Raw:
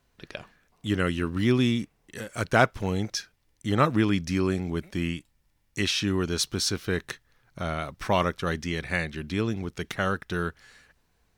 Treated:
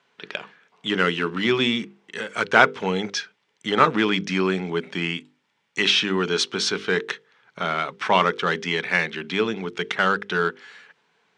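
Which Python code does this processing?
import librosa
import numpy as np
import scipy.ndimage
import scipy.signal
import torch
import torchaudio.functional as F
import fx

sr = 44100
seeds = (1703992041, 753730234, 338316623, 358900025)

p1 = fx.peak_eq(x, sr, hz=1800.0, db=15.0, octaves=1.7)
p2 = fx.hum_notches(p1, sr, base_hz=50, count=10)
p3 = np.clip(10.0 ** (18.0 / 20.0) * p2, -1.0, 1.0) / 10.0 ** (18.0 / 20.0)
p4 = p2 + (p3 * librosa.db_to_amplitude(-7.0))
p5 = fx.cabinet(p4, sr, low_hz=150.0, low_slope=24, high_hz=7900.0, hz=(190.0, 430.0, 890.0, 1800.0, 3300.0), db=(5, 10, 5, -6, 6))
y = p5 * librosa.db_to_amplitude(-4.5)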